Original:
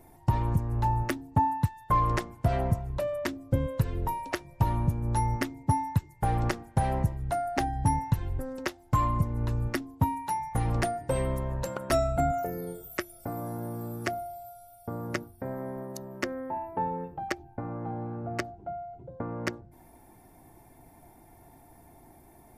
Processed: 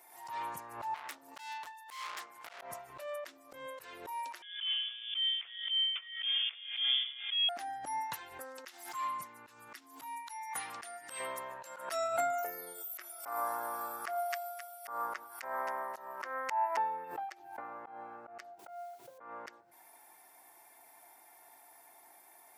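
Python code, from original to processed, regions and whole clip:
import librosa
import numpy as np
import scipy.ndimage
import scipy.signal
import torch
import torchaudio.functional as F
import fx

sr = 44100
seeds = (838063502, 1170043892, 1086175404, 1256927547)

y = fx.chain(x, sr, fx.tube_stage(drive_db=39.0, bias=0.45),
    fx.hum_notches(base_hz=60, count=9), at=(0.94, 2.62))
y = fx.chain(y, sr, fx.steep_highpass(hz=500.0, slope=72),
    fx.freq_invert(carrier_hz=4000), at=(4.42, 7.49))
y = fx.chain(y, sr, fx.highpass(hz=130.0, slope=12),
    fx.peak_eq(hz=580.0, db=-9.0, octaves=1.7), at=(8.65, 11.2))
y = fx.chain(y, sr, fx.peak_eq(hz=1100.0, db=12.5, octaves=1.6),
    fx.echo_wet_highpass(ms=264, feedback_pct=31, hz=2500.0, wet_db=-9), at=(13.01, 16.77))
y = fx.chain(y, sr, fx.high_shelf(hz=2500.0, db=9.0),
    fx.quant_dither(seeds[0], bits=12, dither='triangular'),
    fx.highpass(hz=42.0, slope=12), at=(18.59, 19.18))
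y = scipy.signal.sosfilt(scipy.signal.butter(2, 1100.0, 'highpass', fs=sr, output='sos'), y)
y = fx.auto_swell(y, sr, attack_ms=139.0)
y = fx.pre_swell(y, sr, db_per_s=77.0)
y = y * librosa.db_to_amplitude(3.5)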